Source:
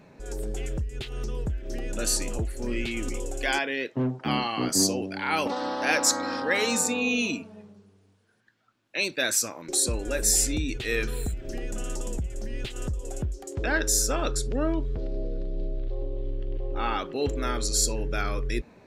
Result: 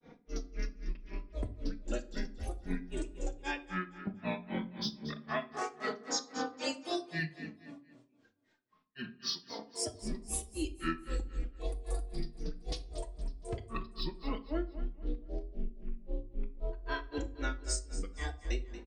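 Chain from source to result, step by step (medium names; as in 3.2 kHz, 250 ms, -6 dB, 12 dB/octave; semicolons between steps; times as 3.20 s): elliptic low-pass 6.9 kHz, stop band 40 dB; peaking EQ 360 Hz +8.5 dB 0.32 oct; comb 3.8 ms, depth 84%; de-hum 60.76 Hz, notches 39; compression, threshold -27 dBFS, peak gain reduction 11 dB; granulator 189 ms, grains 3.8 per s, pitch spread up and down by 7 st; feedback delay 233 ms, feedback 33%, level -13 dB; simulated room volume 510 m³, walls furnished, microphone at 0.61 m; trim -2.5 dB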